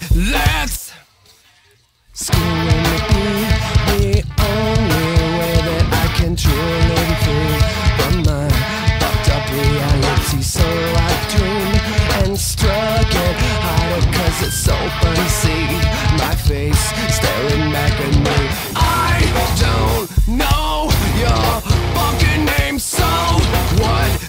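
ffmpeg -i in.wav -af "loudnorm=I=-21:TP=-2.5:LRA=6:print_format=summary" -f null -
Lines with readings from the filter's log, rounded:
Input Integrated:    -15.8 LUFS
Input True Peak:      -2.3 dBTP
Input LRA:             0.6 LU
Input Threshold:     -26.0 LUFS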